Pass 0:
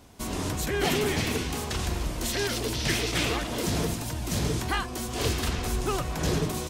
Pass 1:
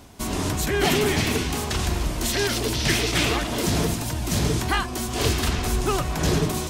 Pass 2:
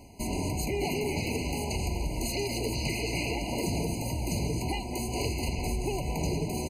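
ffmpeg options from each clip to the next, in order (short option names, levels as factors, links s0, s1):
-af "bandreject=f=500:w=12,areverse,acompressor=mode=upward:threshold=0.0126:ratio=2.5,areverse,volume=1.78"
-filter_complex "[0:a]asplit=7[s0][s1][s2][s3][s4][s5][s6];[s1]adelay=213,afreqshift=87,volume=0.158[s7];[s2]adelay=426,afreqshift=174,volume=0.0966[s8];[s3]adelay=639,afreqshift=261,volume=0.0589[s9];[s4]adelay=852,afreqshift=348,volume=0.0359[s10];[s5]adelay=1065,afreqshift=435,volume=0.0219[s11];[s6]adelay=1278,afreqshift=522,volume=0.0133[s12];[s0][s7][s8][s9][s10][s11][s12]amix=inputs=7:normalize=0,acompressor=threshold=0.0708:ratio=6,afftfilt=real='re*eq(mod(floor(b*sr/1024/1000),2),0)':imag='im*eq(mod(floor(b*sr/1024/1000),2),0)':win_size=1024:overlap=0.75,volume=0.708"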